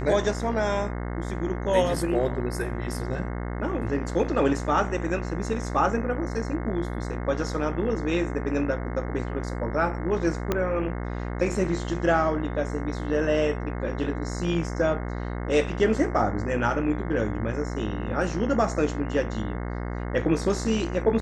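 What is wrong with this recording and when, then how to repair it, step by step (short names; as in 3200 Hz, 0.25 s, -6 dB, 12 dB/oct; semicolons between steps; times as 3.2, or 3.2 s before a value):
buzz 60 Hz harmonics 36 -31 dBFS
10.52 pop -10 dBFS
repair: de-click; de-hum 60 Hz, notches 36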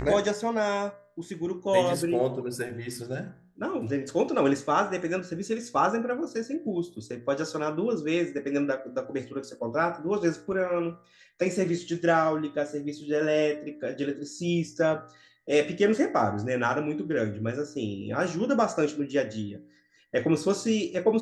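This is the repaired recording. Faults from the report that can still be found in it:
10.52 pop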